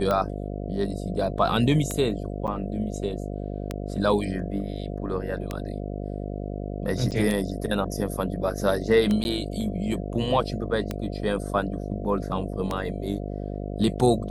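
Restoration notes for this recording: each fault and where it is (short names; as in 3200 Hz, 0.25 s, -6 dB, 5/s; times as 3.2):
buzz 50 Hz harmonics 14 -32 dBFS
tick 33 1/3 rpm -13 dBFS
2.47–2.48 gap 7.8 ms
7.11–7.12 gap 8.5 ms
9.24–9.25 gap 11 ms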